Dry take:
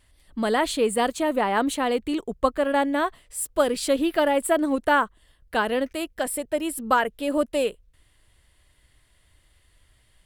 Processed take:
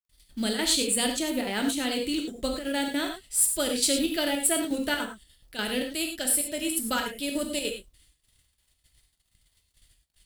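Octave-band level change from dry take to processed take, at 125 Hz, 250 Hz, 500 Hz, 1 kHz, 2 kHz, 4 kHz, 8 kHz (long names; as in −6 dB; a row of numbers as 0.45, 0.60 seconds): can't be measured, −2.5 dB, −8.5 dB, −12.0 dB, −4.5 dB, +5.0 dB, +7.5 dB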